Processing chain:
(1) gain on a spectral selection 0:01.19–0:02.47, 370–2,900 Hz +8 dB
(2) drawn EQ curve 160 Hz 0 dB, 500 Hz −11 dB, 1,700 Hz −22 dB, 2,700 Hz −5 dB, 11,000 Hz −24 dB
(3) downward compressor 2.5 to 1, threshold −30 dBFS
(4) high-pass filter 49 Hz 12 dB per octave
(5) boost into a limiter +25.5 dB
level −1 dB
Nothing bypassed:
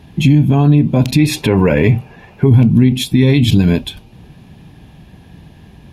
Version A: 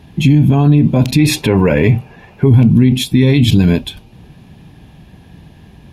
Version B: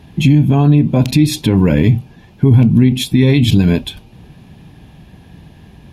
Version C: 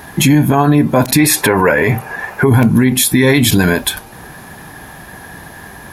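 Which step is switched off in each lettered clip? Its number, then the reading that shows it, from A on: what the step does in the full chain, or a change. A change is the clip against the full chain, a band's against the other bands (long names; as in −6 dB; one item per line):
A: 3, 8 kHz band +1.5 dB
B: 1, 500 Hz band −2.5 dB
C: 2, change in momentary loudness spread +2 LU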